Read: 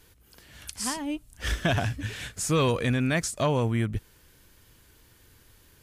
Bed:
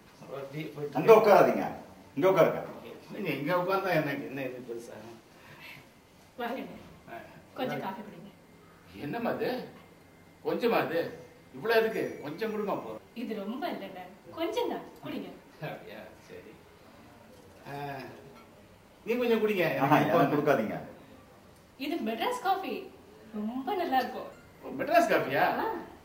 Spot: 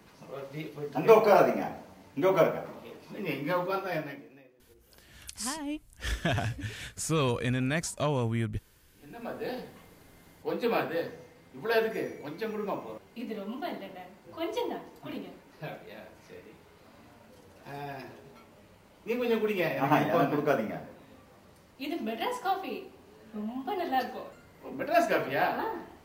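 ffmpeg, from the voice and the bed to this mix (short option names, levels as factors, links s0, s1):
-filter_complex "[0:a]adelay=4600,volume=0.631[s0];[1:a]volume=10,afade=t=out:st=3.57:d=0.86:silence=0.0841395,afade=t=in:st=8.95:d=0.71:silence=0.0891251[s1];[s0][s1]amix=inputs=2:normalize=0"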